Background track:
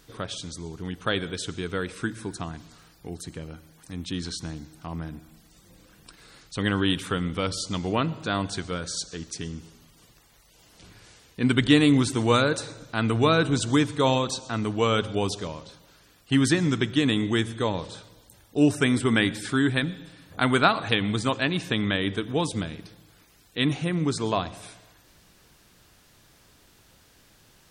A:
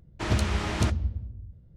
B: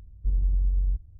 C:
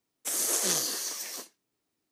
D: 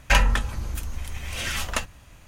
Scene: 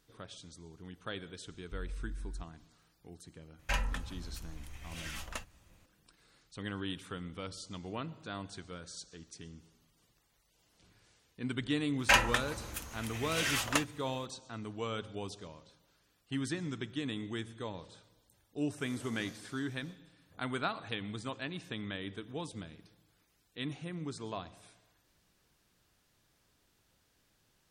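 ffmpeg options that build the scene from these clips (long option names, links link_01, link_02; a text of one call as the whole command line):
ffmpeg -i bed.wav -i cue0.wav -i cue1.wav -i cue2.wav -i cue3.wav -filter_complex "[4:a]asplit=2[link_01][link_02];[0:a]volume=-15dB[link_03];[link_02]highpass=frequency=330:poles=1[link_04];[3:a]lowpass=frequency=1800:poles=1[link_05];[2:a]atrim=end=1.19,asetpts=PTS-STARTPTS,volume=-17.5dB,afade=type=in:duration=0.004:curve=hsin,afade=type=out:start_time=1.186:duration=0.004:curve=hsin,adelay=1470[link_06];[link_01]atrim=end=2.27,asetpts=PTS-STARTPTS,volume=-14.5dB,afade=type=in:duration=0.004:curve=hsin,afade=type=out:start_time=2.266:duration=0.004:curve=hsin,adelay=3590[link_07];[link_04]atrim=end=2.27,asetpts=PTS-STARTPTS,volume=-3dB,afade=type=in:duration=0.004:curve=hsin,afade=type=out:start_time=2.266:duration=0.004:curve=hsin,adelay=11990[link_08];[link_05]atrim=end=2.11,asetpts=PTS-STARTPTS,volume=-17.5dB,afade=type=in:duration=0.004:curve=hsin,afade=type=out:start_time=2.106:duration=0.004:curve=hsin,adelay=18510[link_09];[link_03][link_06][link_07][link_08][link_09]amix=inputs=5:normalize=0" out.wav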